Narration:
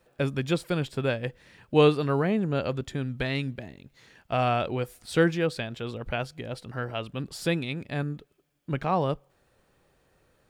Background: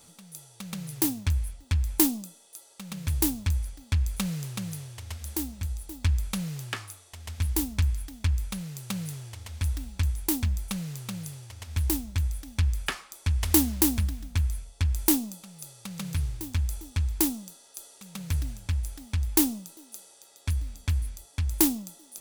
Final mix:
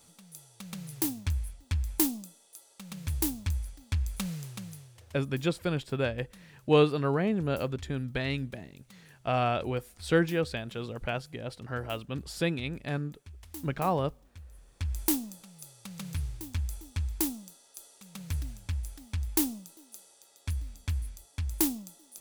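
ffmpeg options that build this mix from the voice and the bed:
-filter_complex "[0:a]adelay=4950,volume=-2.5dB[a];[1:a]volume=13.5dB,afade=t=out:st=4.31:d=0.95:silence=0.11885,afade=t=in:st=14.51:d=0.47:silence=0.125893[b];[a][b]amix=inputs=2:normalize=0"

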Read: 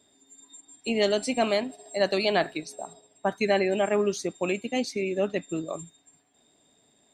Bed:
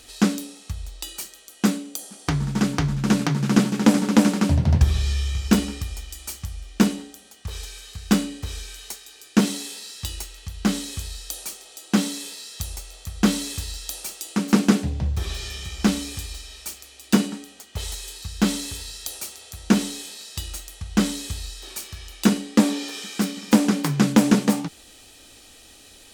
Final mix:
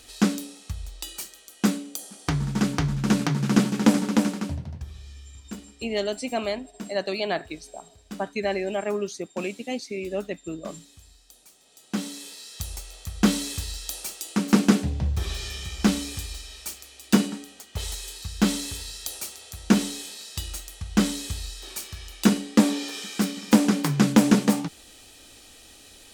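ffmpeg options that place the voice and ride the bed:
-filter_complex "[0:a]adelay=4950,volume=-3dB[a];[1:a]volume=17dB,afade=t=out:st=3.88:d=0.85:silence=0.125893,afade=t=in:st=11.5:d=1.39:silence=0.112202[b];[a][b]amix=inputs=2:normalize=0"

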